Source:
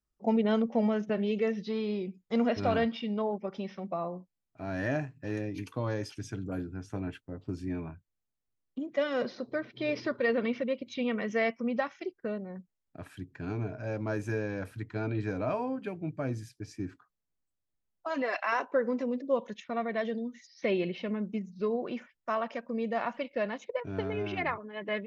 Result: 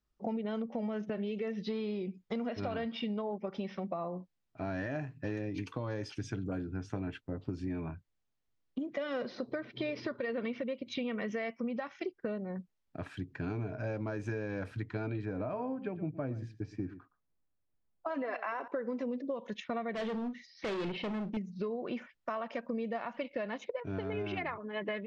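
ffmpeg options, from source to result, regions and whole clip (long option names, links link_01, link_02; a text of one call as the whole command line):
ffmpeg -i in.wav -filter_complex "[0:a]asettb=1/sr,asplit=3[link_01][link_02][link_03];[link_01]atrim=end=15.254[link_04];[link_02]atrim=start=15.25:end=18.68,asetpts=PTS-STARTPTS,afade=type=in:duration=0.004:curve=qsin,afade=type=out:start_time=3.426:duration=0.004:curve=qsin,lowpass=frequency=1300:poles=1,aecho=1:1:117:0.141,atrim=end_sample=151263[link_05];[link_03]atrim=start=18.676[link_06];[link_04][link_05]acrossfade=duration=0.004:curve1=hsin:curve2=qsin[link_07];[link_07][link_06]acrossfade=duration=0.004:curve1=qsin:curve2=hsin,asettb=1/sr,asplit=3[link_08][link_09][link_10];[link_08]atrim=end=19.934[link_11];[link_09]atrim=start=19.93:end=21.37,asetpts=PTS-STARTPTS,afade=type=in:duration=0.004:curve=qsin,afade=type=out:start_time=1.436:duration=0.004:curve=qsin,lowpass=frequency=5100:width=0.5412,lowpass=frequency=5100:width=1.3066,asoftclip=type=hard:threshold=-35.5dB,asplit=2[link_12][link_13];[link_13]adelay=41,volume=-11.5dB[link_14];[link_12][link_14]amix=inputs=2:normalize=0,atrim=end_sample=63504[link_15];[link_10]atrim=start=21.366[link_16];[link_11][link_15]acrossfade=duration=0.004:curve1=hsin:curve2=qsin[link_17];[link_17][link_16]acrossfade=duration=0.004:curve1=qsin:curve2=hsin,lowpass=5300,alimiter=level_in=0.5dB:limit=-24dB:level=0:latency=1:release=227,volume=-0.5dB,acompressor=threshold=-37dB:ratio=6,volume=4dB" out.wav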